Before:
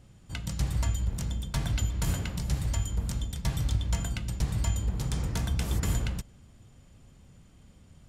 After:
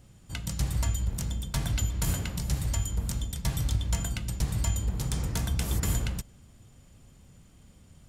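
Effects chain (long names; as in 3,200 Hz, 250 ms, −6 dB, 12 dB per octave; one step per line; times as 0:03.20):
high-shelf EQ 7,900 Hz +8.5 dB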